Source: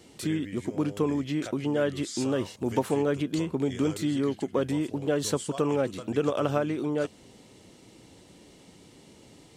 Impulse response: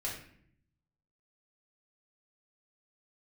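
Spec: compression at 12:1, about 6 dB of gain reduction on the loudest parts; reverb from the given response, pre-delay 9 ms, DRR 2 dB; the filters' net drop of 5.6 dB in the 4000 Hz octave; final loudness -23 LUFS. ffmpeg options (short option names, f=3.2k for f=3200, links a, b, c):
-filter_complex "[0:a]equalizer=f=4k:t=o:g=-7.5,acompressor=threshold=-27dB:ratio=12,asplit=2[a][b];[1:a]atrim=start_sample=2205,adelay=9[c];[b][c]afir=irnorm=-1:irlink=0,volume=-4.5dB[d];[a][d]amix=inputs=2:normalize=0,volume=8dB"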